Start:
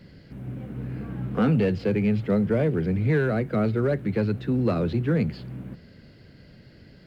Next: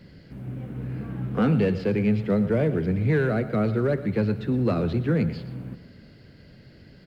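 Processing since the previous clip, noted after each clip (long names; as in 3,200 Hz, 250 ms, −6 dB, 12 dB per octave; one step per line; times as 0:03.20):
single-tap delay 118 ms −14.5 dB
on a send at −17 dB: convolution reverb RT60 2.0 s, pre-delay 27 ms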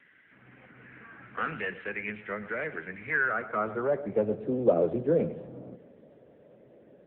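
band-pass filter sweep 1,800 Hz → 560 Hz, 0:03.04–0:04.39
level +7.5 dB
AMR narrowband 6.7 kbit/s 8,000 Hz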